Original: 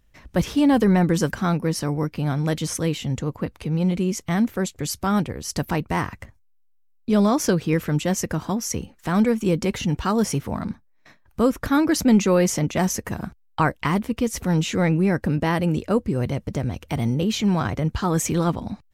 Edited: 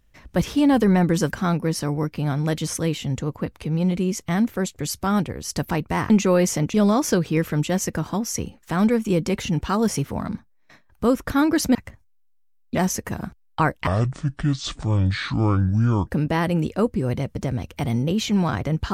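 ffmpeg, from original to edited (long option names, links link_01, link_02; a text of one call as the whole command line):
ffmpeg -i in.wav -filter_complex "[0:a]asplit=7[link_01][link_02][link_03][link_04][link_05][link_06][link_07];[link_01]atrim=end=6.102[link_08];[link_02]atrim=start=12.108:end=12.752[link_09];[link_03]atrim=start=7.098:end=12.112[link_10];[link_04]atrim=start=6.098:end=7.102[link_11];[link_05]atrim=start=12.748:end=13.874[link_12];[link_06]atrim=start=13.87:end=15.19,asetpts=PTS-STARTPTS,asetrate=26460,aresample=44100[link_13];[link_07]atrim=start=15.186[link_14];[link_08][link_09]acrossfade=duration=0.004:curve1=hsin:curve2=hsin[link_15];[link_15][link_10]acrossfade=duration=0.004:curve1=hsin:curve2=hsin[link_16];[link_16][link_11]acrossfade=duration=0.004:curve1=hsin:curve2=hsin[link_17];[link_17][link_12]acrossfade=duration=0.004:curve1=hsin:curve2=hsin[link_18];[link_18][link_13]acrossfade=duration=0.004:curve1=hsin:curve2=hsin[link_19];[link_19][link_14]acrossfade=duration=0.004:curve1=hsin:curve2=hsin" out.wav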